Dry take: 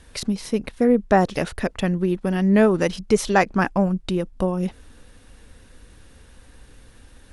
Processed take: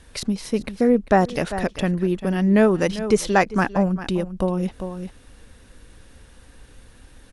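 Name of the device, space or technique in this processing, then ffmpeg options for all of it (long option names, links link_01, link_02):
ducked delay: -filter_complex "[0:a]asplit=3[link_01][link_02][link_03];[link_02]adelay=396,volume=-8dB[link_04];[link_03]apad=whole_len=340409[link_05];[link_04][link_05]sidechaincompress=threshold=-27dB:ratio=8:attack=11:release=250[link_06];[link_01][link_06]amix=inputs=2:normalize=0"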